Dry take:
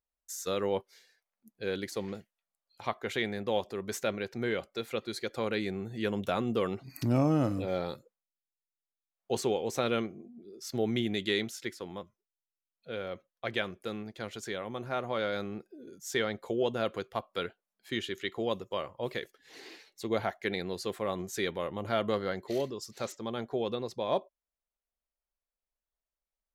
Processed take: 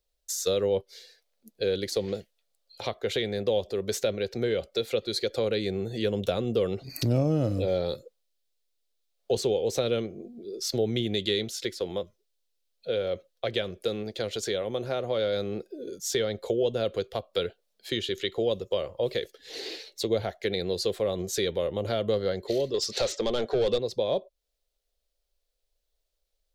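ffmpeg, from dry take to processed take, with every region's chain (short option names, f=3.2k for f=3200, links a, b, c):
-filter_complex "[0:a]asettb=1/sr,asplit=3[a][b][c];[a]atrim=end=22.744[d];[b]atrim=start=22.74:end=23.78,asetpts=PTS-STARTPTS,afade=t=in:d=0.004:c=qsin,afade=t=out:st=1.036:d=0.004:c=qsin,lowpass=11k,asplit=2[e][f];[f]highpass=f=720:p=1,volume=20dB,asoftclip=type=tanh:threshold=-20.5dB[g];[e][g]amix=inputs=2:normalize=0,lowpass=f=4k:p=1,volume=-6dB[h];[c]atrim=start=23.776[i];[d][h]acrossfade=d=0.004:c1=hsin:c2=qsin[j];[j][i]acrossfade=d=0.004:c1=qsin:c2=hsin,lowshelf=f=62:g=11,acrossover=split=190[k][l];[l]acompressor=threshold=-40dB:ratio=3[m];[k][m]amix=inputs=2:normalize=0,equalizer=f=125:t=o:w=1:g=-5,equalizer=f=250:t=o:w=1:g=-5,equalizer=f=500:t=o:w=1:g=10,equalizer=f=1k:t=o:w=1:g=-8,equalizer=f=2k:t=o:w=1:g=-3,equalizer=f=4k:t=o:w=1:g=8,volume=8.5dB"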